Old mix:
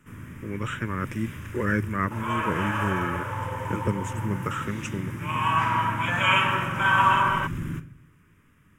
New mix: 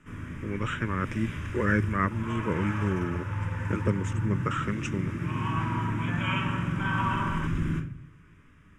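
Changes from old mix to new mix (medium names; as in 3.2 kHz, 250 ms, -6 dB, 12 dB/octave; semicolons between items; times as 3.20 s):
first sound: send +8.0 dB; second sound -10.5 dB; master: add low-pass 6.7 kHz 12 dB/octave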